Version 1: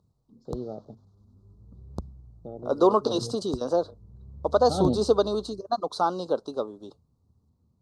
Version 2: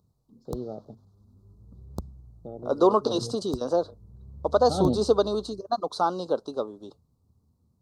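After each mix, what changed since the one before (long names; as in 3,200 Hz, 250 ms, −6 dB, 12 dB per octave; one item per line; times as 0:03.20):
background: remove high-frequency loss of the air 58 metres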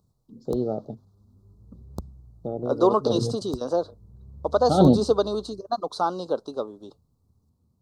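first voice +9.0 dB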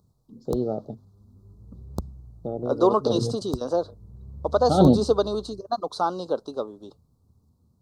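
background +4.0 dB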